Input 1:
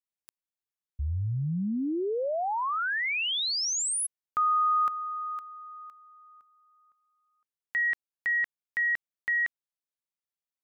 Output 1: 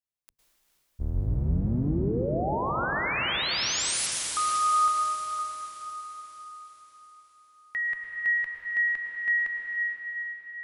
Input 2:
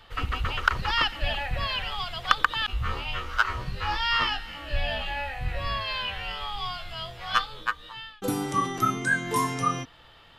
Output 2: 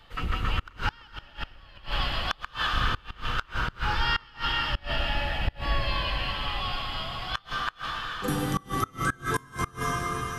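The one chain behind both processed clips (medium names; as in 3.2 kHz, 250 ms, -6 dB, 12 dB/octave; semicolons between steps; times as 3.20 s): octave divider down 1 oct, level +1 dB; echo that smears into a reverb 465 ms, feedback 49%, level -7.5 dB; plate-style reverb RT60 2.7 s, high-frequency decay 1×, pre-delay 95 ms, DRR 1 dB; inverted gate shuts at -12 dBFS, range -26 dB; trim -2.5 dB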